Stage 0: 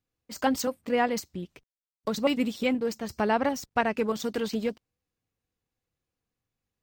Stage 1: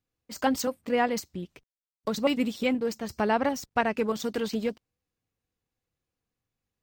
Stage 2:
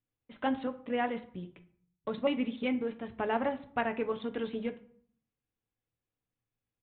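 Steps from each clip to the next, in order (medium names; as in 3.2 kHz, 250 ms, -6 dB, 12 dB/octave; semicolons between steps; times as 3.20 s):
no audible change
reverberation RT60 0.60 s, pre-delay 4 ms, DRR 7.5 dB; resampled via 8 kHz; trim -6.5 dB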